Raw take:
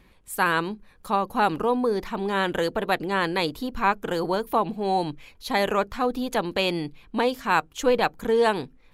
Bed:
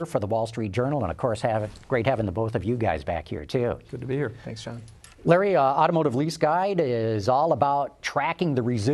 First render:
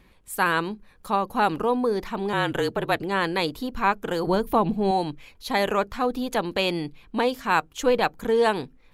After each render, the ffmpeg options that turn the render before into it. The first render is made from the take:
-filter_complex "[0:a]asettb=1/sr,asplit=3[s0][s1][s2];[s0]atrim=end=2.334[s3];[s1]atrim=start=2.33:end=3.02,asetpts=PTS-STARTPTS,afade=t=in:d=0.004:c=qsin,afade=t=out:st=0.686:d=0.004:c=qsin,afreqshift=-34[s4];[s2]atrim=start=3.016[s5];[s3][s4]acrossfade=d=0.004:c1=hsin:c2=qsin[s6];[s6][s5]acrossfade=d=0.004:c1=qsin:c2=hsin,asettb=1/sr,asplit=3[s7][s8][s9];[s7]atrim=end=4.274[s10];[s8]atrim=start=4.27:end=4.91,asetpts=PTS-STARTPTS,afade=t=in:d=0.004:c=qsin,afade=t=out:st=0.636:d=0.004:c=qsin,lowshelf=f=230:g=12[s11];[s9]atrim=start=4.906[s12];[s10][s11]acrossfade=d=0.004:c1=hsin:c2=qsin[s13];[s13][s12]acrossfade=d=0.004:c1=qsin:c2=hsin"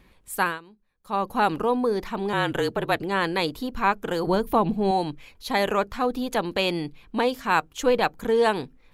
-filter_complex "[0:a]asplit=3[s0][s1][s2];[s0]atrim=end=0.59,asetpts=PTS-STARTPTS,afade=t=out:st=0.41:d=0.18:silence=0.1[s3];[s1]atrim=start=0.59:end=1.03,asetpts=PTS-STARTPTS,volume=0.1[s4];[s2]atrim=start=1.03,asetpts=PTS-STARTPTS,afade=t=in:d=0.18:silence=0.1[s5];[s3][s4][s5]concat=n=3:v=0:a=1"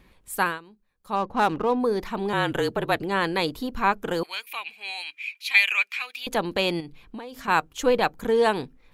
-filter_complex "[0:a]asplit=3[s0][s1][s2];[s0]afade=t=out:st=1.15:d=0.02[s3];[s1]adynamicsmooth=sensitivity=5.5:basefreq=2100,afade=t=in:st=1.15:d=0.02,afade=t=out:st=1.79:d=0.02[s4];[s2]afade=t=in:st=1.79:d=0.02[s5];[s3][s4][s5]amix=inputs=3:normalize=0,asettb=1/sr,asplit=3[s6][s7][s8];[s6]atrim=end=4.234[s9];[s7]atrim=start=4.23:end=6.27,asetpts=PTS-STARTPTS,afade=t=in:d=0.004:c=qsin,afade=t=out:st=2.036:d=0.004:c=qsin,highpass=f=2400:t=q:w=12[s10];[s8]atrim=start=6.266[s11];[s9][s10]acrossfade=d=0.004:c1=hsin:c2=qsin[s12];[s12][s11]acrossfade=d=0.004:c1=qsin:c2=hsin,asettb=1/sr,asplit=3[s13][s14][s15];[s13]atrim=end=6.804[s16];[s14]atrim=start=6.8:end=7.48,asetpts=PTS-STARTPTS,afade=t=in:d=0.004:c=qsin,afade=t=out:st=0.676:d=0.004:c=qsin,acompressor=threshold=0.0224:ratio=20:attack=3.2:release=140:knee=1:detection=peak[s17];[s15]atrim=start=7.476[s18];[s16][s17]acrossfade=d=0.004:c1=hsin:c2=qsin[s19];[s19][s18]acrossfade=d=0.004:c1=qsin:c2=hsin"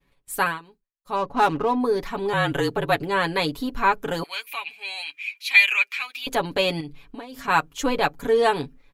-af "agate=range=0.0224:threshold=0.00398:ratio=3:detection=peak,aecho=1:1:7.1:0.75"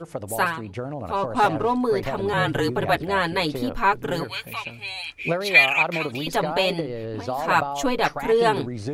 -filter_complex "[1:a]volume=0.473[s0];[0:a][s0]amix=inputs=2:normalize=0"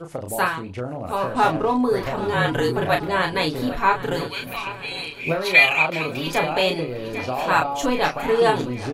-filter_complex "[0:a]asplit=2[s0][s1];[s1]adelay=32,volume=0.562[s2];[s0][s2]amix=inputs=2:normalize=0,aecho=1:1:801|1602|2403|3204|4005:0.168|0.094|0.0526|0.0295|0.0165"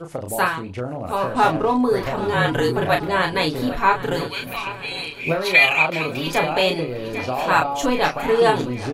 -af "volume=1.19,alimiter=limit=0.708:level=0:latency=1"

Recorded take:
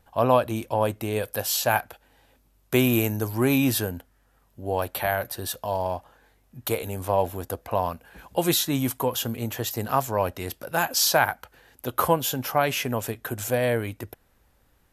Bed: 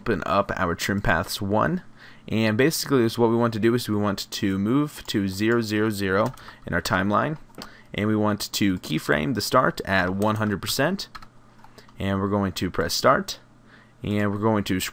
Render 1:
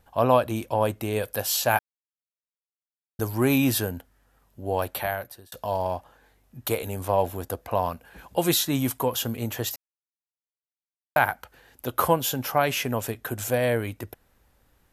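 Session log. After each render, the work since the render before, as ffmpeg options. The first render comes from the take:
-filter_complex "[0:a]asplit=6[s0][s1][s2][s3][s4][s5];[s0]atrim=end=1.79,asetpts=PTS-STARTPTS,afade=t=out:st=1.786:d=0.004:c=hsin[s6];[s1]atrim=start=1.79:end=3.19,asetpts=PTS-STARTPTS,volume=0[s7];[s2]atrim=start=3.19:end=5.52,asetpts=PTS-STARTPTS,afade=t=in:d=0.004:c=hsin,afade=t=out:st=1.71:d=0.62[s8];[s3]atrim=start=5.52:end=9.76,asetpts=PTS-STARTPTS,afade=t=in:d=0.004:c=hsin,afade=t=out:st=4.236:d=0.004:c=hsin[s9];[s4]atrim=start=9.76:end=11.16,asetpts=PTS-STARTPTS,volume=0[s10];[s5]atrim=start=11.16,asetpts=PTS-STARTPTS,afade=t=in:d=0.004:c=hsin[s11];[s6][s7][s8][s9][s10][s11]concat=n=6:v=0:a=1"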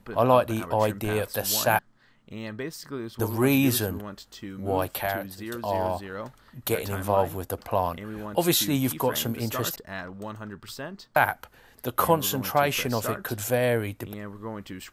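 -filter_complex "[1:a]volume=0.188[s0];[0:a][s0]amix=inputs=2:normalize=0"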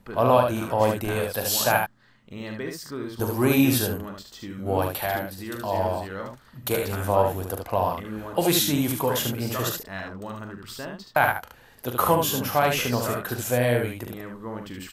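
-af "aecho=1:1:41|74:0.355|0.596"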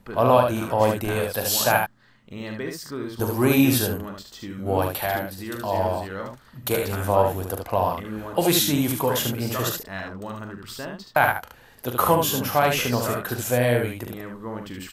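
-af "volume=1.19"

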